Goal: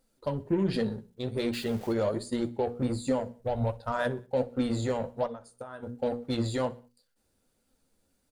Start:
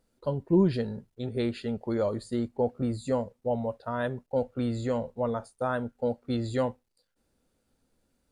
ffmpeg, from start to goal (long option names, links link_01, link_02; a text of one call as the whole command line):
ffmpeg -i in.wav -filter_complex "[0:a]asettb=1/sr,asplit=3[link_01][link_02][link_03];[link_01]atrim=end=1.534[link_04];[link_02]atrim=start=1.53:end=1.93,asetpts=PTS-STARTPTS,afade=type=in:duration=0.004:curve=qsin,afade=type=out:start_time=0.396:duration=0.004:curve=qsin,aeval=exprs='val(0)+0.5*0.0075*sgn(val(0))':channel_layout=same[link_05];[link_03]atrim=start=1.926[link_06];[link_04][link_05]acrossfade=duration=0.004:curve1=hsin:curve2=qsin[link_07];[link_07][link_06]acrossfade=duration=0.004:curve1=qsin:curve2=hsin,highshelf=frequency=4700:gain=6,bandreject=frequency=60:width_type=h:width=6,bandreject=frequency=120:width_type=h:width=6,bandreject=frequency=180:width_type=h:width=6,bandreject=frequency=240:width_type=h:width=6,bandreject=frequency=300:width_type=h:width=6,bandreject=frequency=360:width_type=h:width=6,bandreject=frequency=420:width_type=h:width=6,bandreject=frequency=480:width_type=h:width=6,asplit=3[link_08][link_09][link_10];[link_08]afade=type=out:start_time=3.39:duration=0.02[link_11];[link_09]asubboost=boost=7.5:cutoff=97,afade=type=in:start_time=3.39:duration=0.02,afade=type=out:start_time=3.91:duration=0.02[link_12];[link_10]afade=type=in:start_time=3.91:duration=0.02[link_13];[link_11][link_12][link_13]amix=inputs=3:normalize=0,alimiter=limit=-21.5dB:level=0:latency=1:release=131,asplit=3[link_14][link_15][link_16];[link_14]afade=type=out:start_time=5.26:duration=0.02[link_17];[link_15]acompressor=threshold=-38dB:ratio=16,afade=type=in:start_time=5.26:duration=0.02,afade=type=out:start_time=5.82:duration=0.02[link_18];[link_16]afade=type=in:start_time=5.82:duration=0.02[link_19];[link_17][link_18][link_19]amix=inputs=3:normalize=0,aeval=exprs='0.0841*(cos(1*acos(clip(val(0)/0.0841,-1,1)))-cos(1*PI/2))+0.00335*(cos(7*acos(clip(val(0)/0.0841,-1,1)))-cos(7*PI/2))':channel_layout=same,flanger=delay=3.7:depth=7.4:regen=53:speed=1.3:shape=sinusoidal,asplit=2[link_20][link_21];[link_21]aecho=0:1:62|124|186:0.0891|0.041|0.0189[link_22];[link_20][link_22]amix=inputs=2:normalize=0,volume=6.5dB" out.wav